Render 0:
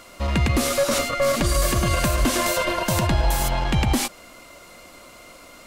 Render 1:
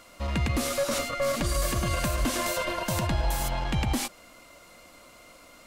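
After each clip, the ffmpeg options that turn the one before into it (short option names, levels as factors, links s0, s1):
-af "bandreject=f=380:w=12,volume=0.473"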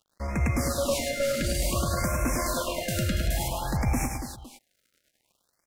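-filter_complex "[0:a]aeval=exprs='sgn(val(0))*max(abs(val(0))-0.00562,0)':c=same,asplit=2[s0][s1];[s1]aecho=0:1:103|214|284|510:0.562|0.211|0.376|0.141[s2];[s0][s2]amix=inputs=2:normalize=0,afftfilt=real='re*(1-between(b*sr/1024,880*pow(3800/880,0.5+0.5*sin(2*PI*0.56*pts/sr))/1.41,880*pow(3800/880,0.5+0.5*sin(2*PI*0.56*pts/sr))*1.41))':imag='im*(1-between(b*sr/1024,880*pow(3800/880,0.5+0.5*sin(2*PI*0.56*pts/sr))/1.41,880*pow(3800/880,0.5+0.5*sin(2*PI*0.56*pts/sr))*1.41))':win_size=1024:overlap=0.75"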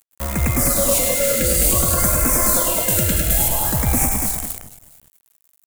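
-filter_complex "[0:a]asplit=5[s0][s1][s2][s3][s4];[s1]adelay=206,afreqshift=-48,volume=0.501[s5];[s2]adelay=412,afreqshift=-96,volume=0.18[s6];[s3]adelay=618,afreqshift=-144,volume=0.0653[s7];[s4]adelay=824,afreqshift=-192,volume=0.0234[s8];[s0][s5][s6][s7][s8]amix=inputs=5:normalize=0,acrusher=bits=7:dc=4:mix=0:aa=0.000001,aexciter=amount=4.5:drive=3.6:freq=7100,volume=1.88"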